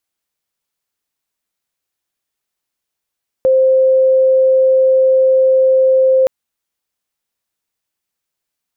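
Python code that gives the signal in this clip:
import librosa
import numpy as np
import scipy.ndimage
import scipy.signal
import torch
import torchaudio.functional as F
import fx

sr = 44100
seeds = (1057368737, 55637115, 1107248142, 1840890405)

y = 10.0 ** (-7.5 / 20.0) * np.sin(2.0 * np.pi * (524.0 * (np.arange(round(2.82 * sr)) / sr)))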